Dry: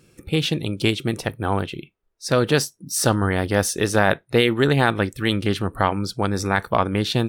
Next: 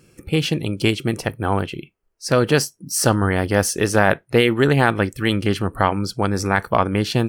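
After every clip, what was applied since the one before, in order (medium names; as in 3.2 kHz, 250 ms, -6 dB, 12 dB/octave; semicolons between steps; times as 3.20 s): band-stop 3.7 kHz, Q 5.8; trim +2 dB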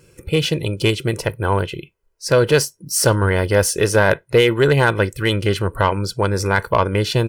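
comb 2 ms, depth 58%; saturation -5 dBFS, distortion -21 dB; trim +1.5 dB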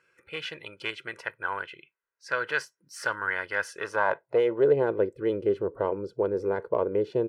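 band-pass sweep 1.6 kHz -> 430 Hz, 3.65–4.77 s; trim -2.5 dB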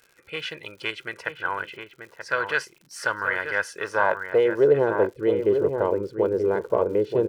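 echo from a far wall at 160 m, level -6 dB; crackle 140 per s -46 dBFS; trim +3.5 dB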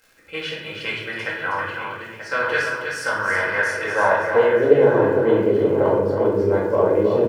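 delay 320 ms -6.5 dB; simulated room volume 280 m³, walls mixed, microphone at 2.1 m; trim -2 dB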